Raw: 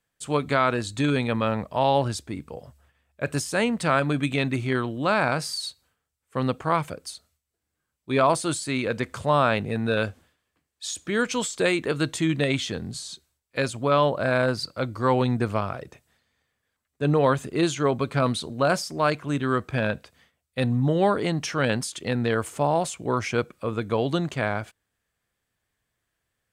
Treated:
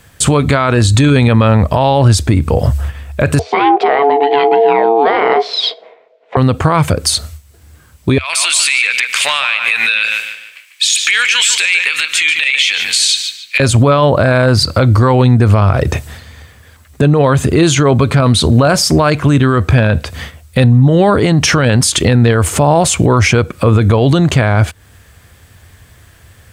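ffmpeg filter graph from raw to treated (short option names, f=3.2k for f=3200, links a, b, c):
-filter_complex "[0:a]asettb=1/sr,asplit=3[a][b][c];[a]atrim=end=3.394[d];[b]atrim=start=3.39:end=6.37,asetpts=PTS-STARTPTS,afade=t=in:d=0.004:c=qsin,afade=t=out:st=2.976:d=0.004:c=qsin,aeval=exprs='val(0)*sin(2*PI*570*n/s)':c=same,highpass=f=290:w=0.5412,highpass=f=290:w=1.3066,equalizer=f=300:t=q:w=4:g=-7,equalizer=f=450:t=q:w=4:g=9,equalizer=f=650:t=q:w=4:g=7,equalizer=f=1.2k:t=q:w=4:g=-6,equalizer=f=1.7k:t=q:w=4:g=-6,equalizer=f=2.8k:t=q:w=4:g=-6,lowpass=f=3.1k:w=0.5412,lowpass=f=3.1k:w=1.3066,asplit=2[e][f];[f]adelay=15,volume=-12.5dB[g];[e][g]amix=inputs=2:normalize=0,atrim=end_sample=131418[h];[c]atrim=start=6.366[i];[d][h]acrossfade=d=0.004:c1=hsin:c2=qsin[j];[j][i]acrossfade=d=0.004:c1=qsin:c2=hsin,asettb=1/sr,asplit=3[k][l][m];[k]atrim=end=8.184[n];[l]atrim=start=8.18:end=13.6,asetpts=PTS-STARTPTS,afade=t=in:d=0.004:c=qsin,afade=t=out:st=5.416:d=0.004:c=qsin,highpass=f=2.4k:t=q:w=4.5,acompressor=threshold=-37dB:ratio=5:attack=3.2:release=140:knee=1:detection=peak,asplit=2[o][p];[p]adelay=147,lowpass=f=4.5k:p=1,volume=-8dB,asplit=2[q][r];[r]adelay=147,lowpass=f=4.5k:p=1,volume=0.37,asplit=2[s][t];[t]adelay=147,lowpass=f=4.5k:p=1,volume=0.37,asplit=2[u][v];[v]adelay=147,lowpass=f=4.5k:p=1,volume=0.37[w];[o][q][s][u][w]amix=inputs=5:normalize=0,atrim=end_sample=239022[x];[m]atrim=start=13.596[y];[n][x]acrossfade=d=0.004:c1=hsin:c2=qsin[z];[z][y]acrossfade=d=0.004:c1=qsin:c2=hsin,equalizer=f=82:t=o:w=1:g=15,acompressor=threshold=-37dB:ratio=5,alimiter=level_in=33.5dB:limit=-1dB:release=50:level=0:latency=1,volume=-1dB"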